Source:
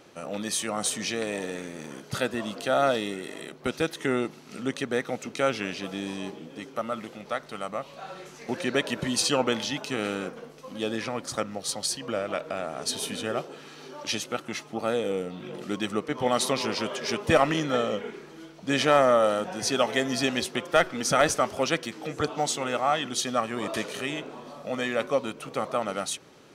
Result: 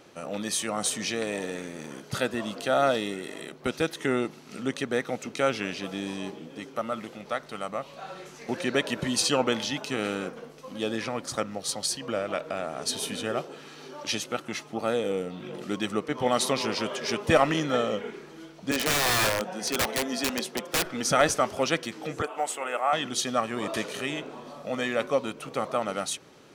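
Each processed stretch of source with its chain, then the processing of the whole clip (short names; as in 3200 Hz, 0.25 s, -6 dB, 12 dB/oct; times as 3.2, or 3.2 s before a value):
18.71–20.85 rippled Chebyshev high-pass 150 Hz, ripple 3 dB + wrapped overs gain 19 dB
22.22–22.93 HPF 500 Hz + band shelf 4700 Hz -13 dB 1.1 oct
whole clip: dry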